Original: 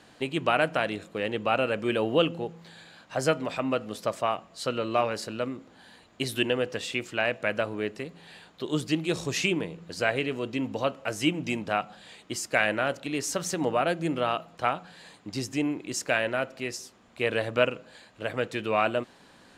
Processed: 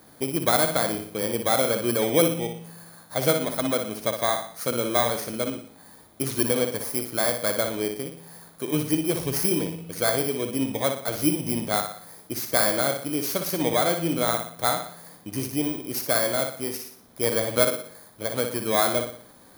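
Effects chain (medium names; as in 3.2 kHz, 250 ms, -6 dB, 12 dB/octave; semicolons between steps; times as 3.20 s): bit-reversed sample order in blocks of 16 samples; flutter echo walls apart 10.2 m, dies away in 0.51 s; trim +2.5 dB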